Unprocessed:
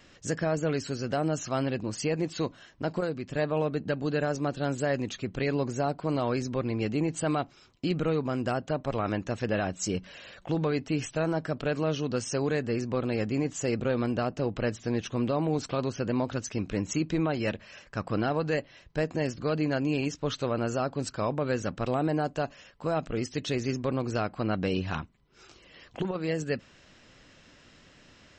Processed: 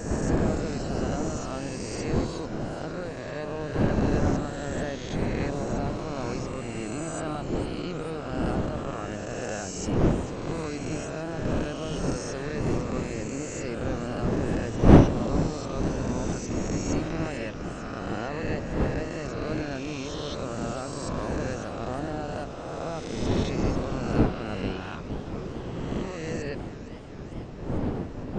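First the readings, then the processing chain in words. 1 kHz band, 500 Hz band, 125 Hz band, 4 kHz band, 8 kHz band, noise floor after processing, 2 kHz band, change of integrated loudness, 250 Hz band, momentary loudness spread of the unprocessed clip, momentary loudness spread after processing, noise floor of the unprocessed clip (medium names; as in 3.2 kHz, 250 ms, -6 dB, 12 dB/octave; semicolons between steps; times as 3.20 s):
+0.5 dB, -0.5 dB, +3.5 dB, -0.5 dB, +0.5 dB, -37 dBFS, -0.5 dB, +1.0 dB, +2.5 dB, 5 LU, 9 LU, -57 dBFS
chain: reverse spectral sustain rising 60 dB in 2.43 s; wind noise 310 Hz -21 dBFS; modulated delay 452 ms, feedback 79%, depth 199 cents, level -14 dB; trim -8.5 dB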